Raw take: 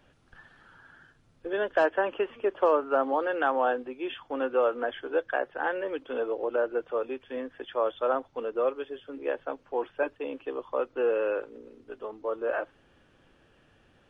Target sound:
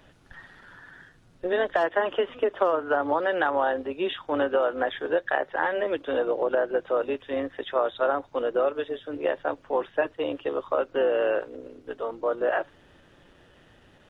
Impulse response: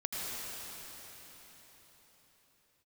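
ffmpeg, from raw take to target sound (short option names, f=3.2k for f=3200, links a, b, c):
-af "acompressor=threshold=-26dB:ratio=6,tremolo=f=170:d=0.4,asetrate=46722,aresample=44100,atempo=0.943874,volume=8dB"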